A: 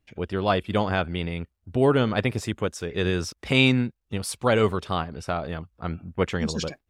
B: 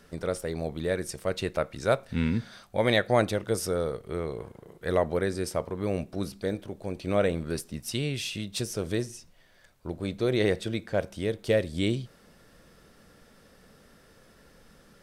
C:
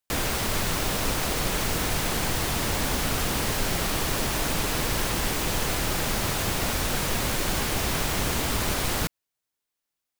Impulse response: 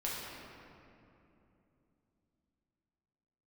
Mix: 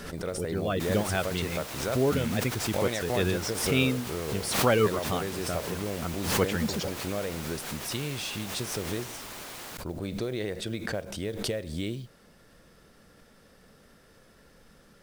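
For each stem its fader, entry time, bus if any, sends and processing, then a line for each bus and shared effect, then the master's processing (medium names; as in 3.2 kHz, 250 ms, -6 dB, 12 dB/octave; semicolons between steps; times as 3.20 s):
-1.5 dB, 0.20 s, no send, reverb removal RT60 0.83 s; rotary cabinet horn 0.6 Hz; spectral gate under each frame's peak -30 dB strong
-1.0 dB, 0.00 s, no send, compression 6:1, threshold -28 dBFS, peak gain reduction 11 dB
-13.0 dB, 0.70 s, no send, high-pass 330 Hz 6 dB/octave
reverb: none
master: modulation noise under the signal 27 dB; swell ahead of each attack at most 59 dB/s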